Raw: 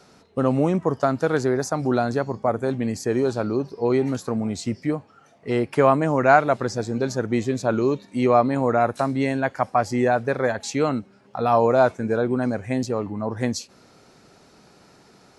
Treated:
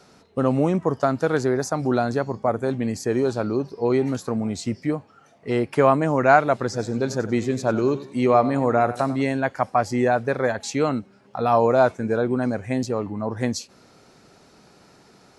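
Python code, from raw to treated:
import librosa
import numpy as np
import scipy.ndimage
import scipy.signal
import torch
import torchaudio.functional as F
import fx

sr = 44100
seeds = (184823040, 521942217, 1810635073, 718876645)

y = fx.echo_warbled(x, sr, ms=94, feedback_pct=37, rate_hz=2.8, cents=50, wet_db=-15, at=(6.63, 9.22))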